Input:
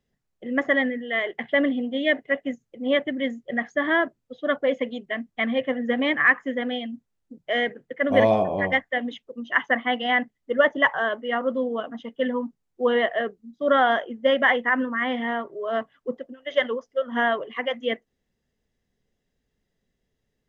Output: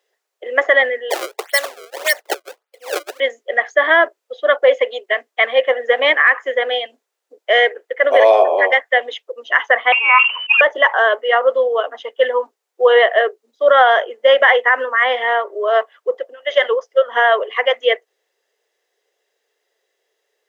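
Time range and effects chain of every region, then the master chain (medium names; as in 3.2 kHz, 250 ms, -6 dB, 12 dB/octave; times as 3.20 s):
1.10–3.20 s: Chebyshev high-pass 1.2 kHz + tilt EQ -2 dB/octave + decimation with a swept rate 28×, swing 160% 1.7 Hz
9.92–10.61 s: frequency inversion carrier 3 kHz + decay stretcher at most 72 dB/s
whole clip: steep high-pass 400 Hz 48 dB/octave; loudness maximiser +12.5 dB; trim -1 dB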